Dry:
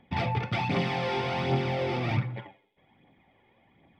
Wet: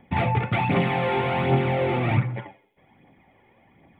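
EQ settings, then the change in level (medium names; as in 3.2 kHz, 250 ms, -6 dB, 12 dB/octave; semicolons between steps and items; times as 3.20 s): Butterworth band-stop 5.5 kHz, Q 0.81; +6.0 dB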